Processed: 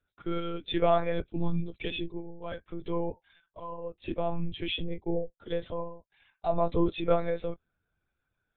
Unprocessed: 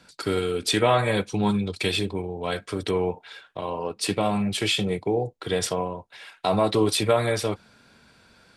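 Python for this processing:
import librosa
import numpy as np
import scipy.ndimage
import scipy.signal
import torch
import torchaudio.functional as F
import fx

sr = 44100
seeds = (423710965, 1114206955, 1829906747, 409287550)

y = fx.lpc_monotone(x, sr, seeds[0], pitch_hz=170.0, order=10)
y = fx.spectral_expand(y, sr, expansion=1.5)
y = F.gain(torch.from_numpy(y), -5.0).numpy()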